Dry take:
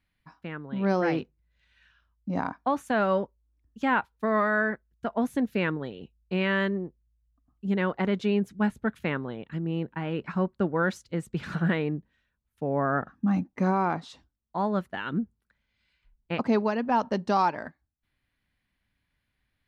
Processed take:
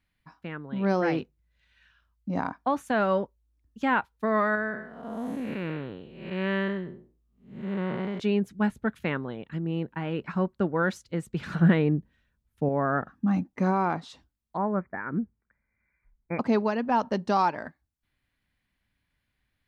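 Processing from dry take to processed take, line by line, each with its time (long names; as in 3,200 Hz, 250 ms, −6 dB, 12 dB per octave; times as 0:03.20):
0:04.55–0:08.20: spectrum smeared in time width 275 ms
0:11.59–0:12.69: low-shelf EQ 440 Hz +7.5 dB
0:14.57–0:16.39: Chebyshev low-pass filter 2,400 Hz, order 10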